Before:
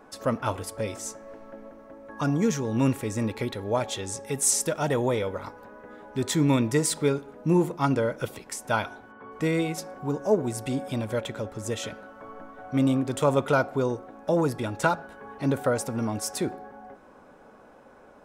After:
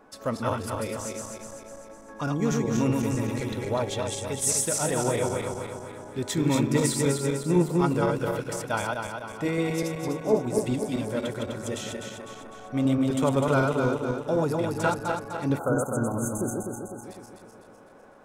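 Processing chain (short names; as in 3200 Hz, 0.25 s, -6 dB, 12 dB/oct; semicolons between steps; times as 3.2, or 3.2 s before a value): regenerating reverse delay 0.126 s, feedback 71%, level -2.5 dB; spectral delete 15.59–17.04, 1600–6100 Hz; gain -3 dB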